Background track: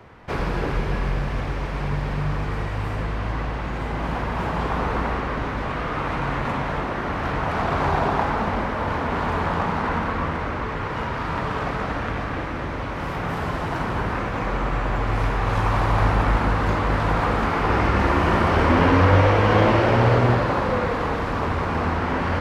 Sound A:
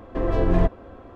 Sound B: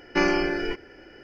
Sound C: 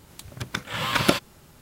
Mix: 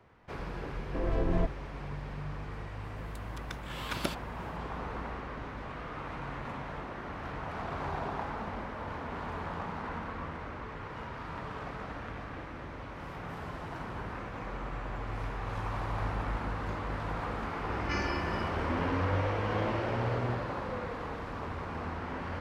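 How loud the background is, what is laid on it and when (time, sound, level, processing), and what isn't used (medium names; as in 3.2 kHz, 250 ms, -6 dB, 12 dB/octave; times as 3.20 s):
background track -14.5 dB
0.79 s: add A -9.5 dB
2.96 s: add C -14 dB
17.74 s: add B -14 dB + tilt shelf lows -5.5 dB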